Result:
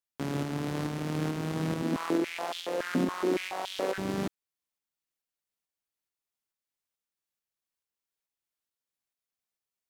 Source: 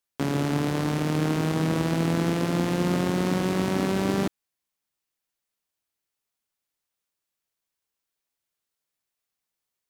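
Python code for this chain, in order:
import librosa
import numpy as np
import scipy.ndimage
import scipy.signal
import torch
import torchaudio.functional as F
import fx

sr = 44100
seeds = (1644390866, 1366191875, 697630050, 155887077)

y = fx.tremolo_shape(x, sr, shape='saw_up', hz=2.3, depth_pct=35)
y = fx.filter_held_highpass(y, sr, hz=7.1, low_hz=240.0, high_hz=3300.0, at=(1.82, 3.98))
y = F.gain(torch.from_numpy(y), -5.5).numpy()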